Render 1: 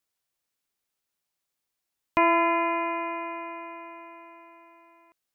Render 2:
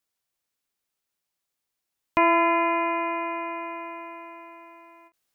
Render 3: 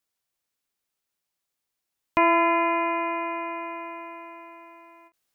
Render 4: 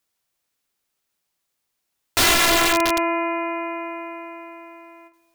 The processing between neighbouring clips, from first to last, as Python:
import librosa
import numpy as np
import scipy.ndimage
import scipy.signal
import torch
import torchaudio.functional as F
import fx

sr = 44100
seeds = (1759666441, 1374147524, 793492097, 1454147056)

y1 = fx.rider(x, sr, range_db=3, speed_s=2.0)
y1 = fx.end_taper(y1, sr, db_per_s=380.0)
y1 = y1 * librosa.db_to_amplitude(3.0)
y2 = y1
y3 = fx.rev_freeverb(y2, sr, rt60_s=1.4, hf_ratio=0.75, predelay_ms=5, drr_db=13.0)
y3 = (np.mod(10.0 ** (17.5 / 20.0) * y3 + 1.0, 2.0) - 1.0) / 10.0 ** (17.5 / 20.0)
y3 = y3 * librosa.db_to_amplitude(6.0)